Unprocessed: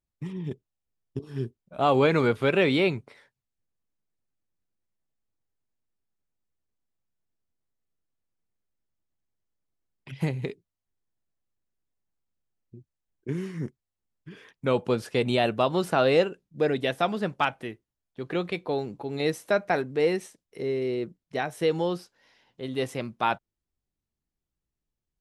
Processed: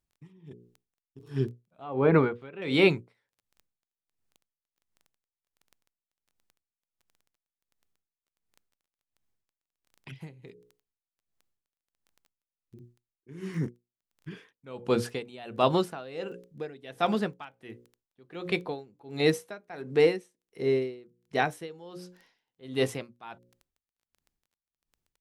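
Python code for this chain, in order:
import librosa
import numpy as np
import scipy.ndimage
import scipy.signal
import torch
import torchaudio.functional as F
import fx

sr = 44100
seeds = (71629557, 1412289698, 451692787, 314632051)

y = fx.notch(x, sr, hz=590.0, q=13.0)
y = fx.env_lowpass_down(y, sr, base_hz=1200.0, full_db=-16.5, at=(1.28, 2.62))
y = fx.hum_notches(y, sr, base_hz=60, count=9)
y = fx.dmg_crackle(y, sr, seeds[0], per_s=11.0, level_db=-44.0)
y = y * 10.0 ** (-25 * (0.5 - 0.5 * np.cos(2.0 * np.pi * 1.4 * np.arange(len(y)) / sr)) / 20.0)
y = y * 10.0 ** (4.0 / 20.0)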